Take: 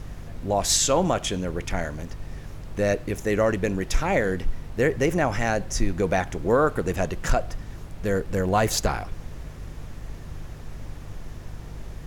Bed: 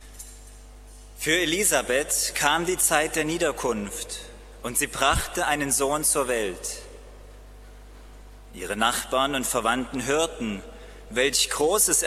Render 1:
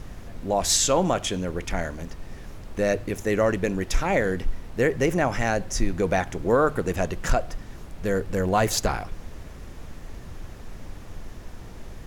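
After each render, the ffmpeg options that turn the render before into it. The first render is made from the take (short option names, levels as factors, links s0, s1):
-af "bandreject=f=50:t=h:w=4,bandreject=f=100:t=h:w=4,bandreject=f=150:t=h:w=4"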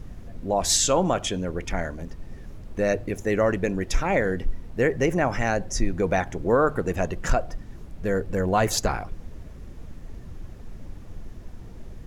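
-af "afftdn=nr=8:nf=-41"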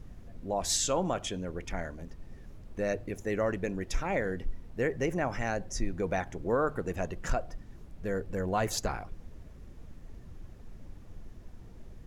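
-af "volume=0.398"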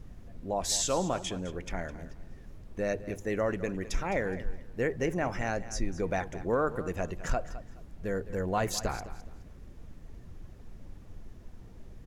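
-af "aecho=1:1:210|420|630:0.178|0.0445|0.0111"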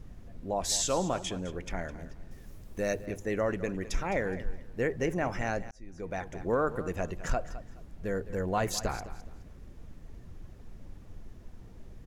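-filter_complex "[0:a]asettb=1/sr,asplit=3[s0][s1][s2];[s0]atrim=end=2.314[s3];[s1]atrim=start=2.31:end=3.06,asetpts=PTS-STARTPTS,afade=t=in:d=0.004:c=qsin,afade=t=out:st=0.746:d=0.004:c=qsin,aemphasis=mode=production:type=50kf[s4];[s2]atrim=start=3.056[s5];[s3][s4]acrossfade=d=0.004:c1=hsin:c2=qsin[s6];[s6][s5]acrossfade=d=0.004:c1=qsin:c2=hsin,asplit=2[s7][s8];[s7]atrim=end=5.71,asetpts=PTS-STARTPTS,afade=t=out:st=5.706:d=0.004:c=hsin[s9];[s8]atrim=start=5.71,asetpts=PTS-STARTPTS,afade=t=in:d=0.78[s10];[s9][s10]concat=n=2:v=0:a=1"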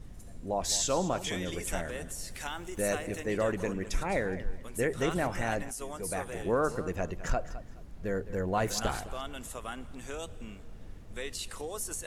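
-filter_complex "[1:a]volume=0.141[s0];[0:a][s0]amix=inputs=2:normalize=0"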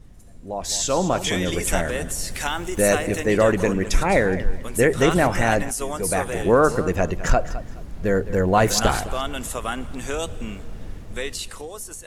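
-af "dynaudnorm=f=150:g=13:m=4.22"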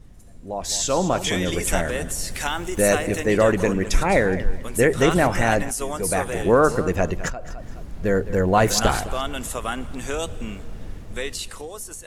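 -filter_complex "[0:a]asettb=1/sr,asplit=3[s0][s1][s2];[s0]atrim=end=7.284[s3];[s1]atrim=start=7.28:end=7.69,asetpts=PTS-STARTPTS,afade=t=in:d=0.004:c=qsin,afade=t=out:st=0.406:d=0.004:c=qsin,acompressor=threshold=0.0398:ratio=6:attack=3.2:release=140:knee=1:detection=peak[s4];[s2]atrim=start=7.686[s5];[s3][s4]acrossfade=d=0.004:c1=hsin:c2=qsin[s6];[s6][s5]acrossfade=d=0.004:c1=qsin:c2=hsin"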